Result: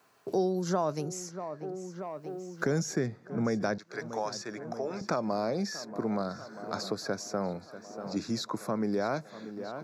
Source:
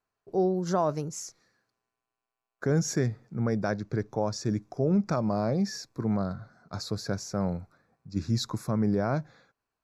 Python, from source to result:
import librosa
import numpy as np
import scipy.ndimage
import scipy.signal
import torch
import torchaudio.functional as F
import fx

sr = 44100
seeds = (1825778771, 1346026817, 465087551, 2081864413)

y = fx.highpass(x, sr, hz=fx.steps((0.0, 150.0), (3.78, 850.0), (5.01, 270.0)), slope=12)
y = fx.echo_tape(y, sr, ms=636, feedback_pct=76, wet_db=-18, lp_hz=2400.0, drive_db=16.0, wow_cents=27)
y = fx.band_squash(y, sr, depth_pct=70)